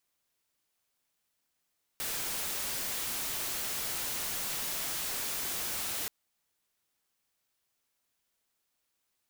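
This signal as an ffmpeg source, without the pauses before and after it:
-f lavfi -i "anoisesrc=c=white:a=0.0308:d=4.08:r=44100:seed=1"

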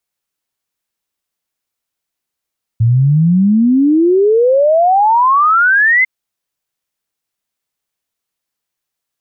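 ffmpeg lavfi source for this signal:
-f lavfi -i "aevalsrc='0.447*clip(min(t,3.25-t)/0.01,0,1)*sin(2*PI*110*3.25/log(2100/110)*(exp(log(2100/110)*t/3.25)-1))':d=3.25:s=44100"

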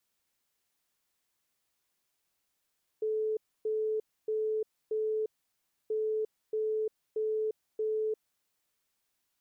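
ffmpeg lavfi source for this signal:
-f lavfi -i "aevalsrc='0.0398*sin(2*PI*434*t)*clip(min(mod(mod(t,2.88),0.63),0.35-mod(mod(t,2.88),0.63))/0.005,0,1)*lt(mod(t,2.88),2.52)':d=5.76:s=44100"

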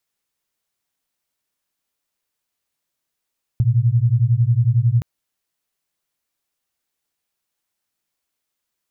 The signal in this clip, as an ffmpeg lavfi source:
-f lavfi -i "aevalsrc='0.158*(sin(2*PI*113*t)+sin(2*PI*124*t))':d=1.42:s=44100"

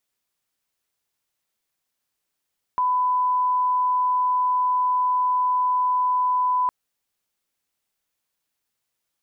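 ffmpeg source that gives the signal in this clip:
-f lavfi -i "sine=f=1000:d=3.91:r=44100,volume=0.06dB"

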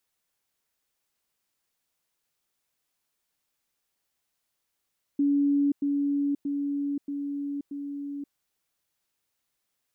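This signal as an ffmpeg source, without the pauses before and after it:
-f lavfi -i "aevalsrc='pow(10,(-20-3*floor(t/0.63))/20)*sin(2*PI*284*t)*clip(min(mod(t,0.63),0.53-mod(t,0.63))/0.005,0,1)':d=3.15:s=44100"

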